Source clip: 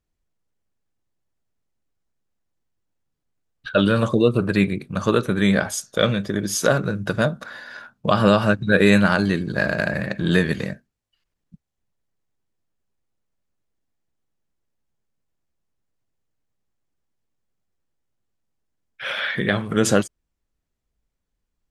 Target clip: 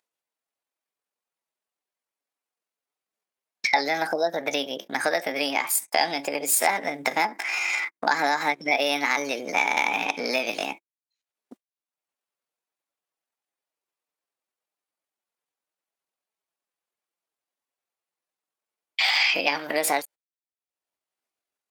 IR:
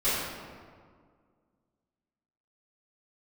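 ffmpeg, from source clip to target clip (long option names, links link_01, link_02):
-af "acompressor=mode=upward:threshold=-21dB:ratio=2.5,agate=range=-36dB:threshold=-34dB:ratio=16:detection=peak,asetrate=62367,aresample=44100,atempo=0.707107,acompressor=threshold=-21dB:ratio=6,highpass=610,volume=5dB"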